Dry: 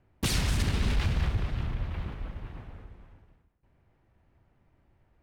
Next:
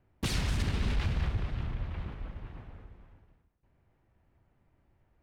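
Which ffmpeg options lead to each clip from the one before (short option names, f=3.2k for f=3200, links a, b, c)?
-af "highshelf=f=7.2k:g=-7.5,volume=-3dB"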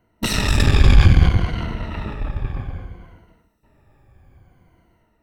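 -af "afftfilt=real='re*pow(10,13/40*sin(2*PI*(1.9*log(max(b,1)*sr/1024/100)/log(2)-(-0.61)*(pts-256)/sr)))':imag='im*pow(10,13/40*sin(2*PI*(1.9*log(max(b,1)*sr/1024/100)/log(2)-(-0.61)*(pts-256)/sr)))':win_size=1024:overlap=0.75,aeval=exprs='0.211*(cos(1*acos(clip(val(0)/0.211,-1,1)))-cos(1*PI/2))+0.0237*(cos(6*acos(clip(val(0)/0.211,-1,1)))-cos(6*PI/2))':c=same,dynaudnorm=f=150:g=5:m=6dB,volume=7dB"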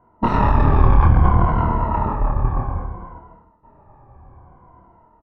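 -filter_complex "[0:a]alimiter=limit=-10dB:level=0:latency=1:release=50,lowpass=f=1k:t=q:w=4.9,asplit=2[a][b];[b]adelay=26,volume=-3dB[c];[a][c]amix=inputs=2:normalize=0,volume=3dB"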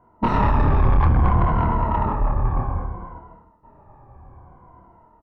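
-af "asoftclip=type=tanh:threshold=-10dB"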